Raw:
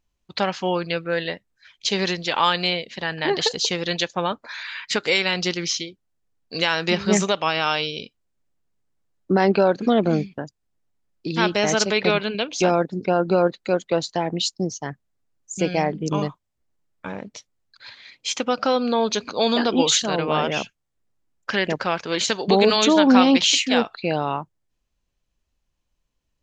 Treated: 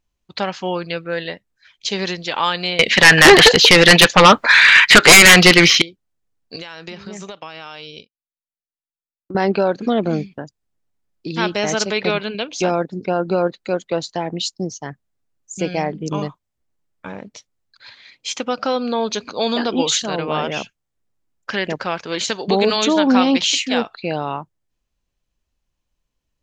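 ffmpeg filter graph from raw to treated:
-filter_complex "[0:a]asettb=1/sr,asplit=3[a][b][c];[a]atrim=end=2.794[d];[b]atrim=start=2.79:end=5.82,asetpts=PTS-STARTPTS,afade=t=in:d=0.004:c=qsin,afade=t=out:st=3.026:d=0.004:c=qsin,acrossover=split=2900[e][f];[f]acompressor=threshold=-38dB:ratio=4:attack=1:release=60[g];[e][g]amix=inputs=2:normalize=0,equalizer=f=2.1k:w=0.59:g=10,aeval=exprs='0.794*sin(PI/2*4.47*val(0)/0.794)':c=same[h];[c]atrim=start=5.816[i];[d][h]acrossfade=d=0.004:c1=hsin:c2=qsin[j];[j][i]acrossfade=d=0.004:c1=qsin:c2=hsin,asettb=1/sr,asplit=3[k][l][m];[k]atrim=end=6.564[n];[l]atrim=start=6.56:end=9.35,asetpts=PTS-STARTPTS,afade=t=in:d=0.004:c=qsin,afade=t=out:st=2.786:d=0.004:c=qsin,agate=range=-33dB:threshold=-27dB:ratio=3:release=100:detection=peak,acompressor=threshold=-29dB:ratio=8:attack=3.2:release=140:knee=1:detection=peak[o];[m]atrim=start=9.346[p];[n][o]acrossfade=d=0.004:c1=hsin:c2=qsin[q];[q][p]acrossfade=d=0.004:c1=qsin:c2=hsin"

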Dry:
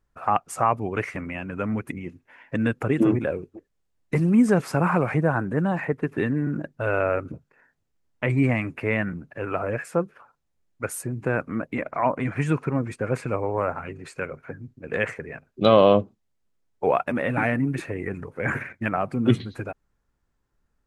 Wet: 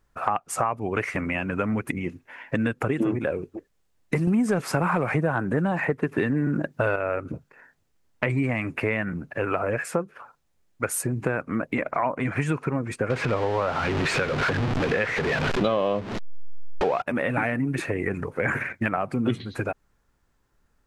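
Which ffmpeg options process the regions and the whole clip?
-filter_complex "[0:a]asettb=1/sr,asplit=3[a][b][c];[a]atrim=end=4.274[d];[b]atrim=start=4.27:end=6.96,asetpts=PTS-STARTPTS,afade=t=in:d=0.004:c=qsin,afade=t=out:st=2.686:d=0.004:c=qsin,highpass=61,acontrast=74[e];[c]atrim=start=6.956[f];[d][e]acrossfade=d=0.004:c1=hsin:c2=qsin[g];[g][f]acrossfade=d=0.004:c1=qsin:c2=hsin,asettb=1/sr,asplit=3[h][i][j];[h]atrim=end=13.104[k];[i]atrim=start=13.1:end=17.02,asetpts=PTS-STARTPTS,afade=t=in:d=0.004:c=qsin,afade=t=out:st=3.916:d=0.004:c=qsin,aeval=exprs='val(0)+0.5*0.0447*sgn(val(0))':c=same,lowpass=3.6k,acompressor=mode=upward:threshold=-24dB:ratio=2.5:attack=3.2:release=140:knee=2.83:detection=peak[l];[j]atrim=start=17.016[m];[k][l]acrossfade=d=0.004:c1=hsin:c2=qsin[n];[n][m]acrossfade=d=0.004:c1=qsin:c2=hsin,lowshelf=f=380:g=-3.5,acompressor=threshold=-30dB:ratio=5,volume=8dB"

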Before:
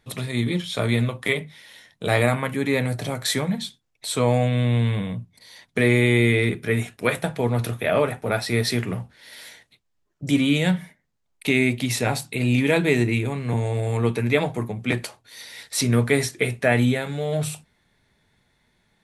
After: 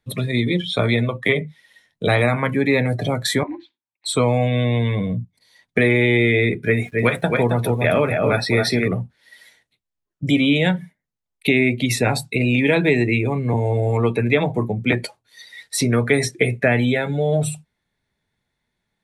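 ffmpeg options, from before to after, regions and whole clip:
-filter_complex "[0:a]asettb=1/sr,asplit=3[a][b][c];[a]atrim=end=3.434[d];[b]atrim=start=3.43:end=4.06,asetpts=PTS-STARTPTS,afade=t=in:d=0.004:c=qsin,afade=t=out:st=0.626:d=0.004:c=qsin,aeval=exprs='val(0)*sin(2*PI*110*n/s)':c=same,highpass=420,equalizer=f=460:t=q:w=4:g=-9,equalizer=f=660:t=q:w=4:g=-7,equalizer=f=940:t=q:w=4:g=7,equalizer=f=1.4k:t=q:w=4:g=-4,equalizer=f=2.4k:t=q:w=4:g=3,equalizer=f=3.4k:t=q:w=4:g=-10,lowpass=f=3.5k:w=0.5412,lowpass=f=3.5k:w=1.3066[e];[c]atrim=start=4.056[f];[d][e]acrossfade=d=0.004:c1=hsin:c2=qsin[g];[g][f]acrossfade=d=0.004:c1=qsin:c2=hsin,asettb=1/sr,asplit=3[h][i][j];[h]atrim=end=6.654[k];[i]atrim=start=6.65:end=8.88,asetpts=PTS-STARTPTS,afade=t=in:d=0.004:c=qsin,afade=t=out:st=2.226:d=0.004:c=qsin,aeval=exprs='val(0)*gte(abs(val(0)),0.00668)':c=same,aecho=1:1:270:0.531,atrim=end_sample=98343[l];[j]atrim=start=8.876[m];[k][l]acrossfade=d=0.004:c1=hsin:c2=qsin[n];[n][m]acrossfade=d=0.004:c1=qsin:c2=hsin,afftdn=nr=18:nf=-33,acrossover=split=350|1900[o][p][q];[o]acompressor=threshold=-27dB:ratio=4[r];[p]acompressor=threshold=-26dB:ratio=4[s];[q]acompressor=threshold=-30dB:ratio=4[t];[r][s][t]amix=inputs=3:normalize=0,volume=7.5dB"

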